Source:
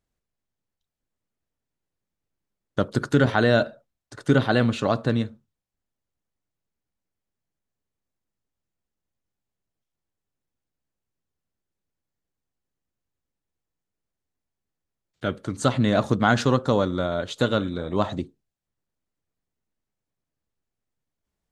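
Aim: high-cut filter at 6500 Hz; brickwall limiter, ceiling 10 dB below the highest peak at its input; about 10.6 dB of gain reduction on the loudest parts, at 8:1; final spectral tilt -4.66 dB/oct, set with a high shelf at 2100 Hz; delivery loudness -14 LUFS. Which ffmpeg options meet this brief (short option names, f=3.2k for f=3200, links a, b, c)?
-af "lowpass=6.5k,highshelf=f=2.1k:g=9,acompressor=threshold=-24dB:ratio=8,volume=18.5dB,alimiter=limit=0dB:level=0:latency=1"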